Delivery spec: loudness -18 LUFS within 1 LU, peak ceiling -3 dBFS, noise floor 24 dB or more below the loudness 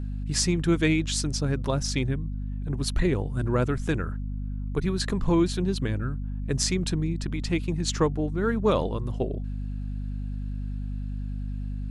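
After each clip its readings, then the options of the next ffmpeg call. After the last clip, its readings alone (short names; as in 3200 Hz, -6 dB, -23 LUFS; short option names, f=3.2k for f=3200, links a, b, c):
hum 50 Hz; harmonics up to 250 Hz; hum level -29 dBFS; loudness -28.0 LUFS; peak -8.0 dBFS; loudness target -18.0 LUFS
-> -af "bandreject=f=50:t=h:w=4,bandreject=f=100:t=h:w=4,bandreject=f=150:t=h:w=4,bandreject=f=200:t=h:w=4,bandreject=f=250:t=h:w=4"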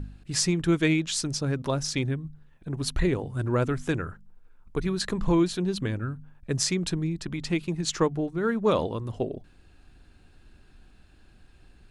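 hum none; loudness -27.5 LUFS; peak -8.0 dBFS; loudness target -18.0 LUFS
-> -af "volume=9.5dB,alimiter=limit=-3dB:level=0:latency=1"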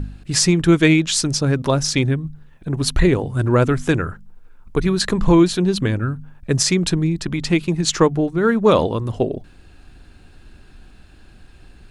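loudness -18.5 LUFS; peak -3.0 dBFS; noise floor -46 dBFS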